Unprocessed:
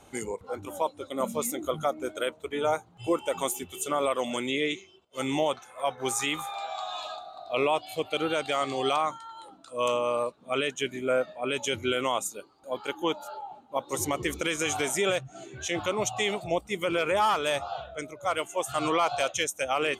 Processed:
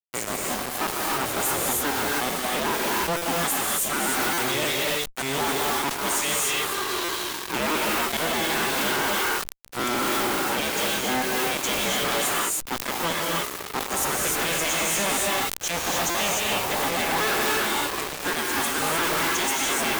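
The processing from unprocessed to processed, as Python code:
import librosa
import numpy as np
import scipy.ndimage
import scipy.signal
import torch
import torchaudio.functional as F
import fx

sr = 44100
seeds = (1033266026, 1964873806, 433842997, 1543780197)

p1 = fx.cycle_switch(x, sr, every=2, mode='inverted')
p2 = fx.low_shelf(p1, sr, hz=470.0, db=-5.5)
p3 = fx.rev_gated(p2, sr, seeds[0], gate_ms=330, shape='rising', drr_db=-1.5)
p4 = fx.level_steps(p3, sr, step_db=21)
p5 = p3 + F.gain(torch.from_numpy(p4), -2.0).numpy()
p6 = fx.high_shelf(p5, sr, hz=11000.0, db=11.5)
p7 = fx.fuzz(p6, sr, gain_db=37.0, gate_db=-31.0)
p8 = fx.buffer_glitch(p7, sr, at_s=(3.17, 4.33, 7.04, 16.1), block=256, repeats=7)
p9 = fx.sustainer(p8, sr, db_per_s=85.0)
y = F.gain(torch.from_numpy(p9), -8.0).numpy()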